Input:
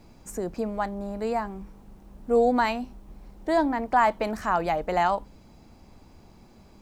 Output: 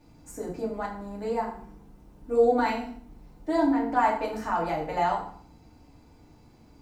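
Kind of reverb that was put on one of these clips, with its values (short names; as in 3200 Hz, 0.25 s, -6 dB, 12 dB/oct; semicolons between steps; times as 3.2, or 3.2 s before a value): FDN reverb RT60 0.55 s, low-frequency decay 1.45×, high-frequency decay 0.85×, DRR -4.5 dB; gain -9 dB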